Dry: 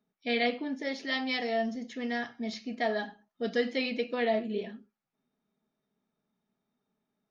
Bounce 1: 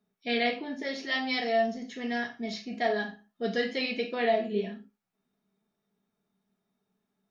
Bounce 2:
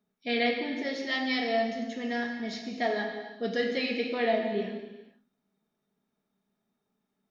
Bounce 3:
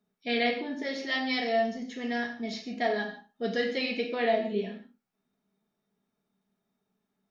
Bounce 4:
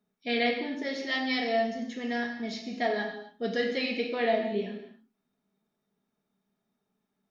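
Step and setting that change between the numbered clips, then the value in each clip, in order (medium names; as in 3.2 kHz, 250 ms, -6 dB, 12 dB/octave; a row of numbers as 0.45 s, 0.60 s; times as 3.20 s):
gated-style reverb, gate: 110 ms, 500 ms, 190 ms, 310 ms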